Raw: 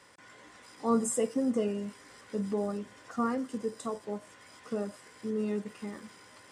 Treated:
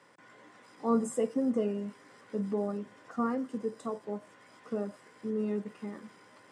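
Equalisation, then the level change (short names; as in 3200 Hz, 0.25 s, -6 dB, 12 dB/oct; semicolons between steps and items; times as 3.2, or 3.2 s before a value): HPF 120 Hz 24 dB/oct; high shelf 2700 Hz -10.5 dB; 0.0 dB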